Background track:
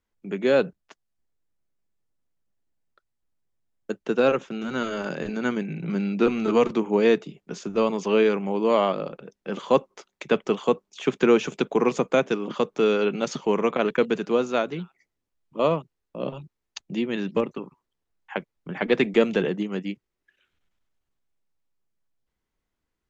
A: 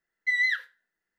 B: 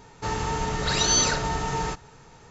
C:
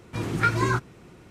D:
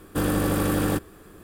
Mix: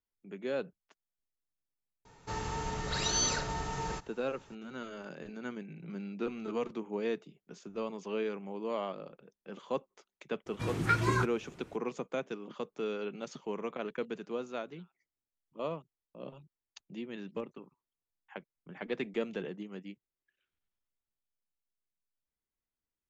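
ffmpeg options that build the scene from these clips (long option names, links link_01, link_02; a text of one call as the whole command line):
ffmpeg -i bed.wav -i cue0.wav -i cue1.wav -i cue2.wav -filter_complex "[0:a]volume=-15dB[link_01];[2:a]atrim=end=2.5,asetpts=PTS-STARTPTS,volume=-9dB,afade=type=in:duration=0.004:curve=hsin,afade=type=out:start_time=2.496:duration=0.004:curve=hsin,adelay=2050[link_02];[3:a]atrim=end=1.3,asetpts=PTS-STARTPTS,volume=-5.5dB,afade=type=in:duration=0.004:curve=hsin,afade=type=out:start_time=1.296:duration=0.004:curve=hsin,adelay=10460[link_03];[link_01][link_02][link_03]amix=inputs=3:normalize=0" out.wav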